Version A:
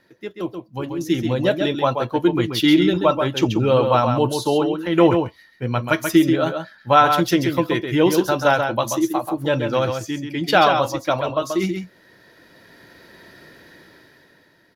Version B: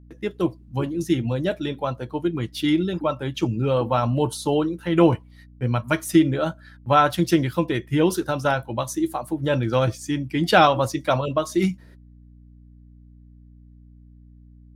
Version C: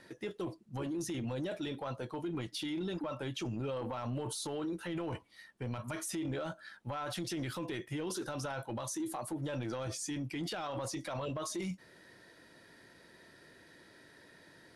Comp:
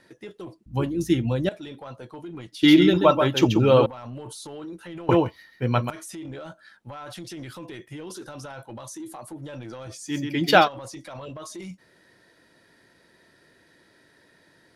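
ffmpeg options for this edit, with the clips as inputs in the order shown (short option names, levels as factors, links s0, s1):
-filter_complex "[0:a]asplit=3[s0][s1][s2];[2:a]asplit=5[s3][s4][s5][s6][s7];[s3]atrim=end=0.662[s8];[1:a]atrim=start=0.658:end=1.492[s9];[s4]atrim=start=1.488:end=2.632[s10];[s0]atrim=start=2.628:end=3.862[s11];[s5]atrim=start=3.858:end=5.092[s12];[s1]atrim=start=5.088:end=5.902[s13];[s6]atrim=start=5.898:end=10.16[s14];[s2]atrim=start=10.06:end=10.69[s15];[s7]atrim=start=10.59[s16];[s8][s9]acrossfade=d=0.004:c1=hsin:c2=hsin[s17];[s17][s10]acrossfade=d=0.004:c1=hsin:c2=hsin[s18];[s18][s11]acrossfade=d=0.004:c1=hsin:c2=hsin[s19];[s19][s12]acrossfade=d=0.004:c1=hsin:c2=hsin[s20];[s20][s13]acrossfade=d=0.004:c1=hsin:c2=hsin[s21];[s21][s14]acrossfade=d=0.004:c1=hsin:c2=hsin[s22];[s22][s15]acrossfade=d=0.1:c1=tri:c2=tri[s23];[s23][s16]acrossfade=d=0.1:c1=tri:c2=tri"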